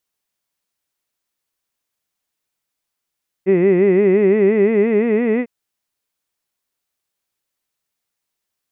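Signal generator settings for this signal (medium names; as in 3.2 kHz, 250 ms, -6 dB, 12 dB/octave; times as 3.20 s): formant-synthesis vowel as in hid, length 2.00 s, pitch 181 Hz, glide +4.5 st, vibrato 5.8 Hz, vibrato depth 1.3 st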